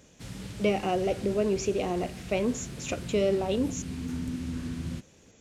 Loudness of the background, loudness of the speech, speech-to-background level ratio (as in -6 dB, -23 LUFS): -38.5 LUFS, -29.5 LUFS, 9.0 dB